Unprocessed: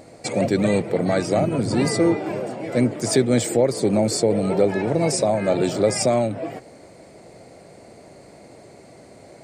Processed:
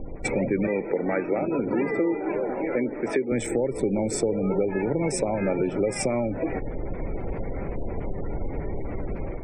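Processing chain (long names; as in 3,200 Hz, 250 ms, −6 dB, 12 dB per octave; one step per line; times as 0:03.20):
adaptive Wiener filter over 9 samples
convolution reverb RT60 0.50 s, pre-delay 3 ms, DRR 16 dB
background noise brown −36 dBFS
automatic gain control gain up to 8.5 dB
0:00.67–0:03.32: three-way crossover with the lows and the highs turned down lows −15 dB, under 230 Hz, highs −20 dB, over 3,600 Hz
gate on every frequency bin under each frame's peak −30 dB strong
downward compressor 4 to 1, threshold −23 dBFS, peak gain reduction 13.5 dB
parametric band 4,200 Hz −6 dB 0.66 octaves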